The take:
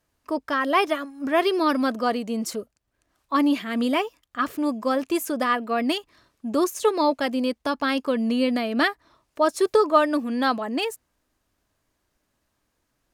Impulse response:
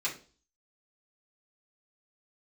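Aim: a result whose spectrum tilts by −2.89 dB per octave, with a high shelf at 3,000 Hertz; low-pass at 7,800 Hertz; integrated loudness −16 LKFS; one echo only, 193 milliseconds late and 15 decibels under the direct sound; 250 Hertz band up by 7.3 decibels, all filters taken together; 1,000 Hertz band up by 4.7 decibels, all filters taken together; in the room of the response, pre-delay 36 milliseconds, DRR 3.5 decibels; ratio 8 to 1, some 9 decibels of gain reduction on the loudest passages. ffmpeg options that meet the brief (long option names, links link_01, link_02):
-filter_complex "[0:a]lowpass=7800,equalizer=frequency=250:width_type=o:gain=8,equalizer=frequency=1000:width_type=o:gain=5,highshelf=frequency=3000:gain=4.5,acompressor=threshold=-19dB:ratio=8,aecho=1:1:193:0.178,asplit=2[link_01][link_02];[1:a]atrim=start_sample=2205,adelay=36[link_03];[link_02][link_03]afir=irnorm=-1:irlink=0,volume=-9dB[link_04];[link_01][link_04]amix=inputs=2:normalize=0,volume=7dB"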